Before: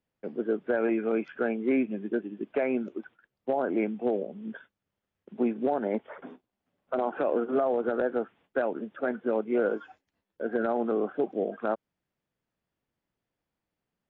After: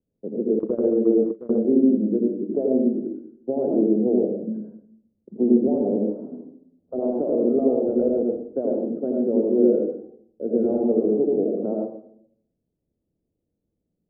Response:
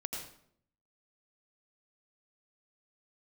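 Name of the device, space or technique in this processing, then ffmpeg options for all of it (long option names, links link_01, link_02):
next room: -filter_complex "[0:a]lowpass=frequency=500:width=0.5412,lowpass=frequency=500:width=1.3066[link_01];[1:a]atrim=start_sample=2205[link_02];[link_01][link_02]afir=irnorm=-1:irlink=0,asettb=1/sr,asplit=3[link_03][link_04][link_05];[link_03]atrim=end=0.594[link_06];[link_04]atrim=start=0.59:end=1.65,asetpts=PTS-STARTPTS,afade=type=in:duration=0.004:curve=qsin,afade=type=out:start_time=1.056:duration=0.004:curve=qsin,agate=range=-19dB:threshold=-28dB:ratio=16:detection=peak[link_07];[link_05]atrim=start=1.646[link_08];[link_06][link_07]acrossfade=duration=0.004:curve1=hsin:curve2=qsin[link_09];[link_09][link_08]acrossfade=duration=0.004:curve1=qsin:curve2=hsin,volume=8dB"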